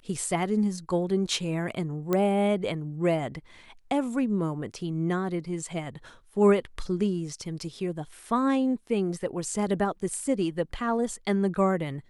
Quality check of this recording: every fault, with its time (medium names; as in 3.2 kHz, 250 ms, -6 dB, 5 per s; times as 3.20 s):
2.13 s: pop -13 dBFS